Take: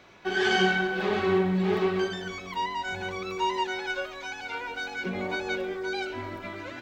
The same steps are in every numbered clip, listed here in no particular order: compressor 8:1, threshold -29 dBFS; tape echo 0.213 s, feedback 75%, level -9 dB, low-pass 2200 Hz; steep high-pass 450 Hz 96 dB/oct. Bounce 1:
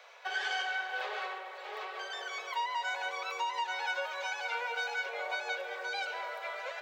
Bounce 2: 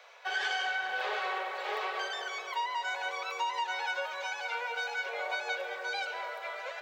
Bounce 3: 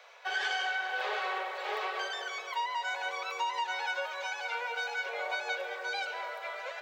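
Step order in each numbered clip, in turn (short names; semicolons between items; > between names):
tape echo > compressor > steep high-pass; steep high-pass > tape echo > compressor; tape echo > steep high-pass > compressor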